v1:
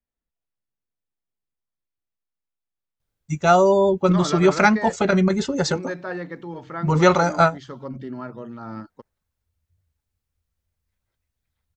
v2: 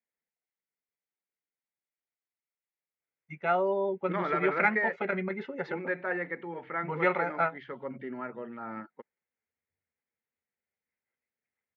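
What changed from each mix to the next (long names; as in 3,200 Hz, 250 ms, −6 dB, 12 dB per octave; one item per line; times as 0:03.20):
first voice −9.0 dB
master: add loudspeaker in its box 290–2,500 Hz, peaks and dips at 300 Hz −7 dB, 640 Hz −4 dB, 1,100 Hz −6 dB, 2,100 Hz +9 dB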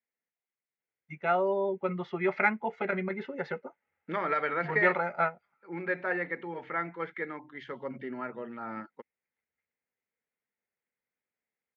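first voice: entry −2.20 s
second voice: remove high-frequency loss of the air 190 metres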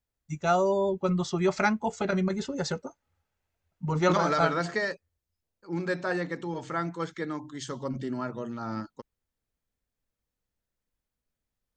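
first voice: entry −0.80 s
master: remove loudspeaker in its box 290–2,500 Hz, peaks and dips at 300 Hz −7 dB, 640 Hz −4 dB, 1,100 Hz −6 dB, 2,100 Hz +9 dB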